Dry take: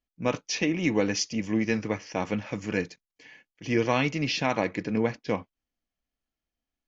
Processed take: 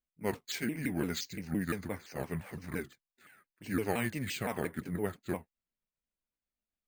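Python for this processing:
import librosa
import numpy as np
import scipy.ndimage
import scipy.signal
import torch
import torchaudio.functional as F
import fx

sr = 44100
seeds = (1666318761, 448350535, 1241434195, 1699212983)

y = fx.pitch_ramps(x, sr, semitones=-6.0, every_ms=172)
y = fx.vibrato(y, sr, rate_hz=1.7, depth_cents=52.0)
y = np.repeat(scipy.signal.resample_poly(y, 1, 4), 4)[:len(y)]
y = y * librosa.db_to_amplitude(-7.0)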